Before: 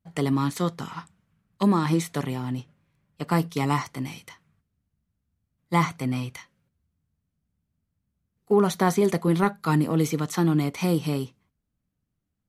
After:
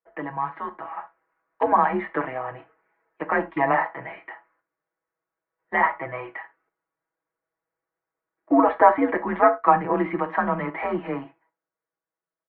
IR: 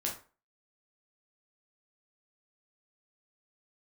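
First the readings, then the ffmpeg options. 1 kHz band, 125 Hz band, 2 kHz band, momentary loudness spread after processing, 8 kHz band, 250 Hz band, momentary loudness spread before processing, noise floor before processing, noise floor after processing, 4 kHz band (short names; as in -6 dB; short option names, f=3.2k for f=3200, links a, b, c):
+8.0 dB, -13.5 dB, +7.5 dB, 19 LU, under -40 dB, -3.5 dB, 13 LU, -80 dBFS, under -85 dBFS, under -10 dB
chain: -filter_complex "[0:a]highpass=f=530:t=q:w=0.5412,highpass=f=530:t=q:w=1.307,lowpass=f=2.1k:t=q:w=0.5176,lowpass=f=2.1k:t=q:w=0.7071,lowpass=f=2.1k:t=q:w=1.932,afreqshift=-130,dynaudnorm=f=150:g=17:m=8dB,aecho=1:1:6.2:0.96,asplit=2[a][b];[1:a]atrim=start_sample=2205,atrim=end_sample=4410[c];[b][c]afir=irnorm=-1:irlink=0,volume=-8.5dB[d];[a][d]amix=inputs=2:normalize=0,volume=-3dB"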